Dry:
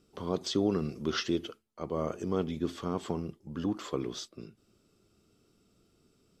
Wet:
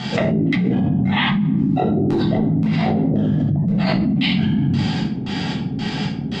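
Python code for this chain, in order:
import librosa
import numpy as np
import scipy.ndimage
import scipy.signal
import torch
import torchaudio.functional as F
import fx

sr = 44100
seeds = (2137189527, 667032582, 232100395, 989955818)

y = fx.pitch_heads(x, sr, semitones=-8.5)
y = scipy.signal.sosfilt(scipy.signal.butter(2, 200.0, 'highpass', fs=sr, output='sos'), y)
y = fx.filter_lfo_lowpass(y, sr, shape='square', hz=1.9, low_hz=320.0, high_hz=4700.0, q=0.9)
y = fx.room_shoebox(y, sr, seeds[0], volume_m3=940.0, walls='furnished', distance_m=6.6)
y = fx.env_flatten(y, sr, amount_pct=100)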